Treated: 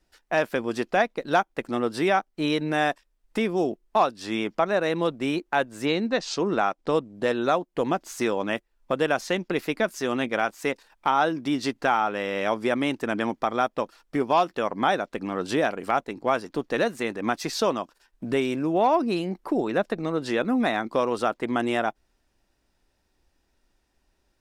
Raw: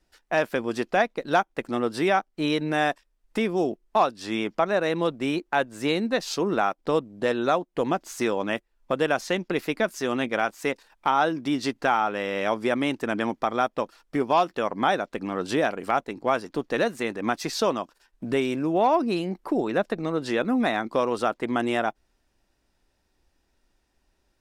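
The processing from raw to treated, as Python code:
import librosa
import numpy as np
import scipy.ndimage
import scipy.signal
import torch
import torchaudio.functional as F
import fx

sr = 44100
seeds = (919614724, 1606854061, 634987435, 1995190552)

y = fx.lowpass(x, sr, hz=fx.line((5.85, 6200.0), (7.13, 12000.0)), slope=24, at=(5.85, 7.13), fade=0.02)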